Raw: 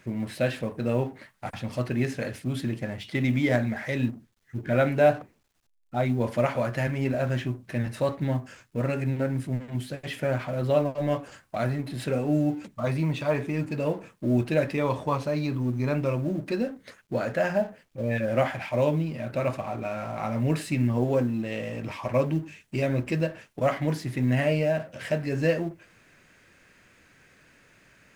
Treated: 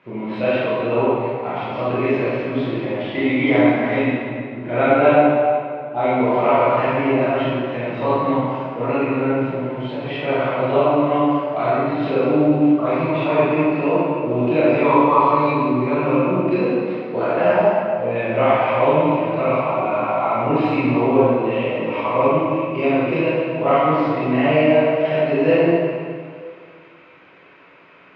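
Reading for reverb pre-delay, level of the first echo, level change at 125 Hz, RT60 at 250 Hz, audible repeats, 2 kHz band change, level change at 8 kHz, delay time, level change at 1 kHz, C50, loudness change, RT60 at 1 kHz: 21 ms, no echo audible, +1.0 dB, 2.1 s, no echo audible, +8.5 dB, below −15 dB, no echo audible, +15.0 dB, −5.0 dB, +9.5 dB, 2.2 s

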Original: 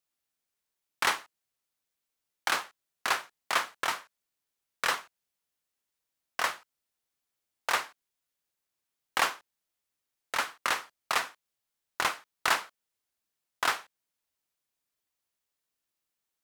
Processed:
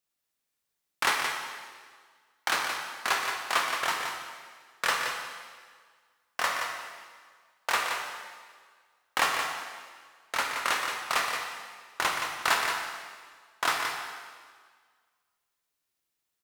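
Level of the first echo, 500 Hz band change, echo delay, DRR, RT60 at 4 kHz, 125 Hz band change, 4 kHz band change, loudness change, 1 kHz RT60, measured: −6.5 dB, +2.5 dB, 173 ms, 0.0 dB, 1.6 s, +3.5 dB, +3.0 dB, +1.5 dB, 1.7 s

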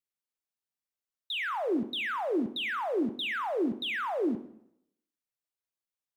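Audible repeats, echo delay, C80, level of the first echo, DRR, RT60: no echo audible, no echo audible, 16.0 dB, no echo audible, 10.5 dB, 0.75 s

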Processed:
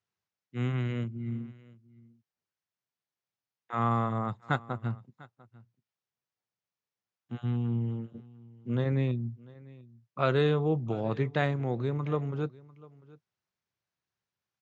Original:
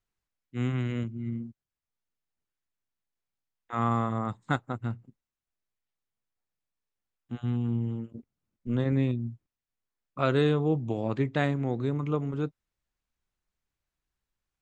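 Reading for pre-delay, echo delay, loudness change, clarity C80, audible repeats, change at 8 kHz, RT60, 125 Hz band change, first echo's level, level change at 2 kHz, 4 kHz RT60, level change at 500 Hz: no reverb audible, 697 ms, −1.5 dB, no reverb audible, 1, can't be measured, no reverb audible, −0.5 dB, −22.0 dB, −0.5 dB, no reverb audible, −0.5 dB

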